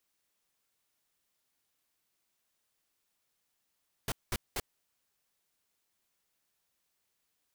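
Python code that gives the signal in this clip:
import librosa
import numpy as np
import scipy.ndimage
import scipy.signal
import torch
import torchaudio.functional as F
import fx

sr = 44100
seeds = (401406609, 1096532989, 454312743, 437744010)

y = fx.noise_burst(sr, seeds[0], colour='pink', on_s=0.04, off_s=0.2, bursts=3, level_db=-33.0)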